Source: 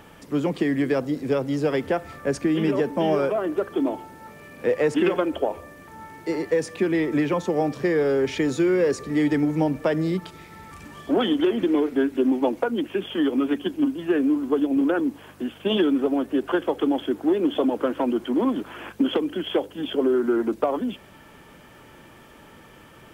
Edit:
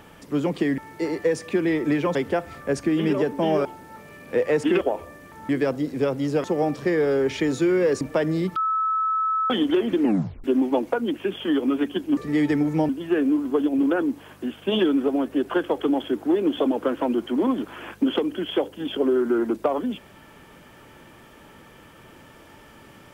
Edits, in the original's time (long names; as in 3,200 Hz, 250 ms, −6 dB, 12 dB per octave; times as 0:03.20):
0:00.78–0:01.73: swap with 0:06.05–0:07.42
0:03.23–0:03.96: remove
0:05.12–0:05.37: remove
0:08.99–0:09.71: move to 0:13.87
0:10.26–0:11.20: beep over 1,300 Hz −20 dBFS
0:11.70: tape stop 0.44 s